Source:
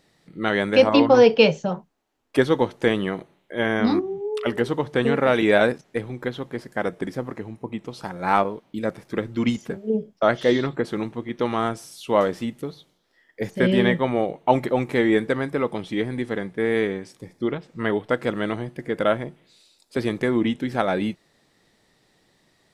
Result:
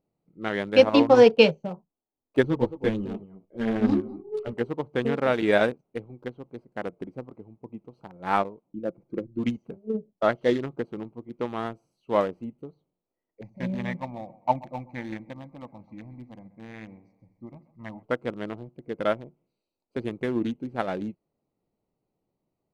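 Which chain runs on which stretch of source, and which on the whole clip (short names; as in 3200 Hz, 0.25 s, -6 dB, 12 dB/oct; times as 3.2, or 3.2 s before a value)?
2.43–4.54 low shelf 230 Hz +11.5 dB + echo 0.213 s -10.5 dB + ensemble effect
8.66–9.39 formant sharpening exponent 1.5 + bell 270 Hz +7 dB 0.23 oct + comb 5.8 ms, depth 42%
13.41–18.03 fixed phaser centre 2100 Hz, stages 8 + split-band echo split 430 Hz, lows 80 ms, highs 0.132 s, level -13 dB
whole clip: Wiener smoothing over 25 samples; upward expander 1.5:1, over -39 dBFS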